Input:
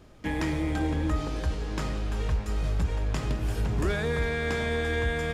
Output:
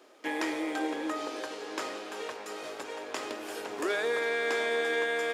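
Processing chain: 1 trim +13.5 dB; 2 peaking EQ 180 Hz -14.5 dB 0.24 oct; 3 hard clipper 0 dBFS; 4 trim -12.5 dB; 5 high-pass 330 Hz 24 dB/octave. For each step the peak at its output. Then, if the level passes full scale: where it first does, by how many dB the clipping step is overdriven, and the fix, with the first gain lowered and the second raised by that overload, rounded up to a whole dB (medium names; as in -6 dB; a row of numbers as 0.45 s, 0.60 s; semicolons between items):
-4.5 dBFS, -4.0 dBFS, -4.0 dBFS, -16.5 dBFS, -18.5 dBFS; nothing clips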